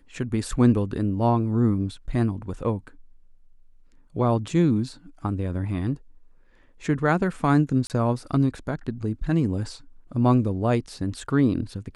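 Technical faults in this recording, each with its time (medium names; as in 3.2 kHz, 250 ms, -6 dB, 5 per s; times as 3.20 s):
7.87–7.90 s: dropout 28 ms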